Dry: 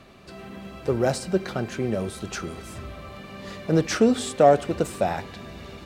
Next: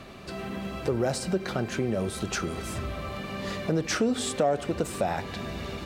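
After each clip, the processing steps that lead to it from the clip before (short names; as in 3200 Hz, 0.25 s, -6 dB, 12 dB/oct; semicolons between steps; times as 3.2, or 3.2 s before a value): in parallel at +3 dB: limiter -17 dBFS, peak gain reduction 11.5 dB; on the sum: compressor 2:1, threshold -26 dBFS, peak gain reduction 10 dB; gain -2.5 dB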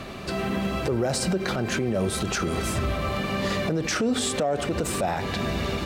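limiter -24.5 dBFS, peak gain reduction 10.5 dB; gain +8 dB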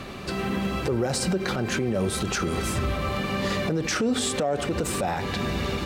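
notch 650 Hz, Q 12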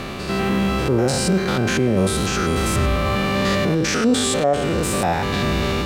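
stepped spectrum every 0.1 s; reverse; upward compressor, threshold -33 dBFS; reverse; gain +8.5 dB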